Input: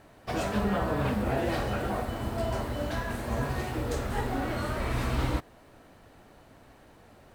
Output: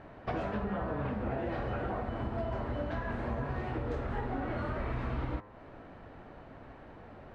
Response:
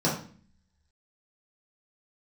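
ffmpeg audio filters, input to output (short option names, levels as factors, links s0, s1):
-af "lowpass=2100,bandreject=f=103.1:t=h:w=4,bandreject=f=206.2:t=h:w=4,bandreject=f=309.3:t=h:w=4,bandreject=f=412.4:t=h:w=4,bandreject=f=515.5:t=h:w=4,bandreject=f=618.6:t=h:w=4,bandreject=f=721.7:t=h:w=4,bandreject=f=824.8:t=h:w=4,bandreject=f=927.9:t=h:w=4,bandreject=f=1031:t=h:w=4,bandreject=f=1134.1:t=h:w=4,bandreject=f=1237.2:t=h:w=4,bandreject=f=1340.3:t=h:w=4,bandreject=f=1443.4:t=h:w=4,bandreject=f=1546.5:t=h:w=4,bandreject=f=1649.6:t=h:w=4,bandreject=f=1752.7:t=h:w=4,bandreject=f=1855.8:t=h:w=4,bandreject=f=1958.9:t=h:w=4,bandreject=f=2062:t=h:w=4,bandreject=f=2165.1:t=h:w=4,bandreject=f=2268.2:t=h:w=4,bandreject=f=2371.3:t=h:w=4,bandreject=f=2474.4:t=h:w=4,bandreject=f=2577.5:t=h:w=4,acompressor=threshold=0.0141:ratio=6,volume=1.78"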